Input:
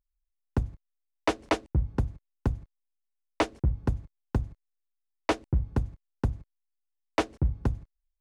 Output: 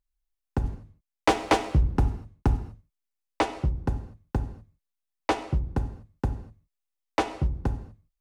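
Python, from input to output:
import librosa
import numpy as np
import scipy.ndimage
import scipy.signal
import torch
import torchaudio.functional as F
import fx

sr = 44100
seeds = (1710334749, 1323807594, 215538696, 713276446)

y = fx.dynamic_eq(x, sr, hz=820.0, q=4.6, threshold_db=-47.0, ratio=4.0, max_db=6)
y = fx.leveller(y, sr, passes=2, at=(0.64, 2.57))
y = fx.rev_gated(y, sr, seeds[0], gate_ms=270, shape='falling', drr_db=7.5)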